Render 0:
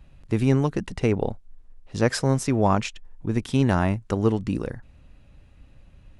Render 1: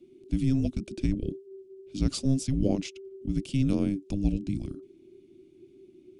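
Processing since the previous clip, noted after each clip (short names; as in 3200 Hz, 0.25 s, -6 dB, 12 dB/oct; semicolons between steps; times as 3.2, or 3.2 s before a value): band shelf 1700 Hz -16 dB 1.2 oct; frequency shift -400 Hz; gain -4.5 dB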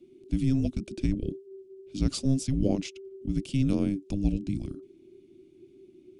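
nothing audible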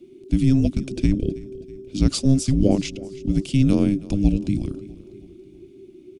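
feedback echo 0.323 s, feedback 51%, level -19.5 dB; gain +8 dB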